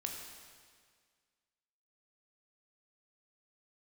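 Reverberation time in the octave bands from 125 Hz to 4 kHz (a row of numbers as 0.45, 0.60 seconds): 1.8, 1.8, 1.9, 1.8, 1.8, 1.7 seconds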